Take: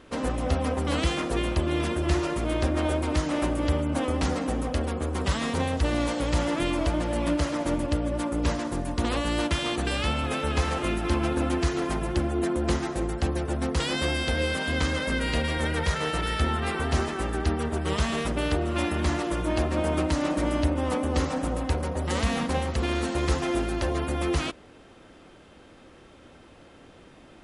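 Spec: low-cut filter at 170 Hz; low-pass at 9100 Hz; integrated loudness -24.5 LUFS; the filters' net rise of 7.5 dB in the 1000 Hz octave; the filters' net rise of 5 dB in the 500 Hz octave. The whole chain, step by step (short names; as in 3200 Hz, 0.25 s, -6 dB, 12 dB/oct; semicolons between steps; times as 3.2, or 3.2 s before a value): HPF 170 Hz; LPF 9100 Hz; bell 500 Hz +4 dB; bell 1000 Hz +8.5 dB; gain +0.5 dB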